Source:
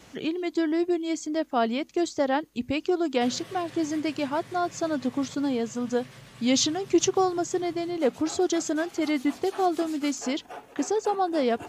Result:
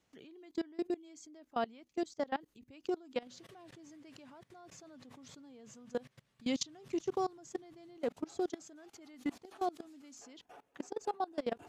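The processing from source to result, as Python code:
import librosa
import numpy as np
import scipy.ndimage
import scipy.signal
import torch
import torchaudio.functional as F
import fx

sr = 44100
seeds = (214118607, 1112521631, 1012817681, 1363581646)

y = fx.level_steps(x, sr, step_db=23)
y = y * librosa.db_to_amplitude(-8.5)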